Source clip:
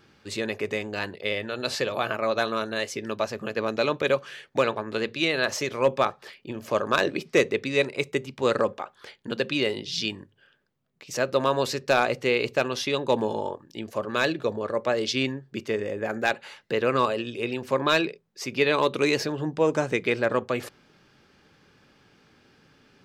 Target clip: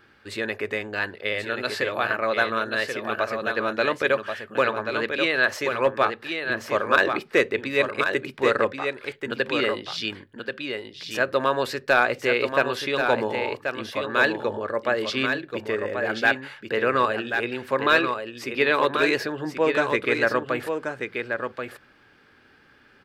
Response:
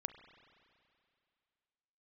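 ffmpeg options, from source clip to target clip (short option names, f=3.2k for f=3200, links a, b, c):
-af "equalizer=f=160:t=o:w=0.67:g=-7,equalizer=f=1.6k:t=o:w=0.67:g=8,equalizer=f=6.3k:t=o:w=0.67:g=-8,aecho=1:1:1083:0.501"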